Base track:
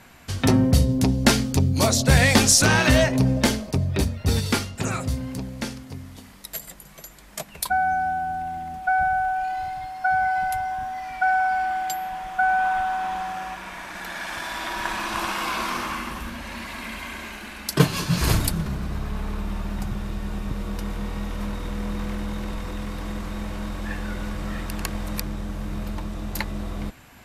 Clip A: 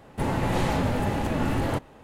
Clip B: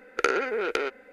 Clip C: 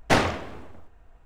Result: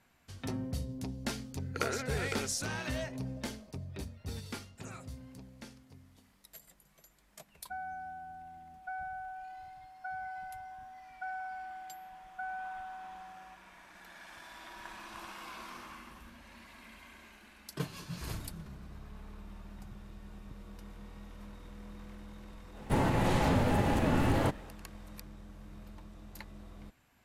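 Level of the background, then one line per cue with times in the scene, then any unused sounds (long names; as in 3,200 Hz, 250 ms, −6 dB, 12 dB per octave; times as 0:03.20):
base track −19.5 dB
0:01.57: mix in B −11 dB
0:22.72: mix in A −1.5 dB, fades 0.05 s + brickwall limiter −17 dBFS
not used: C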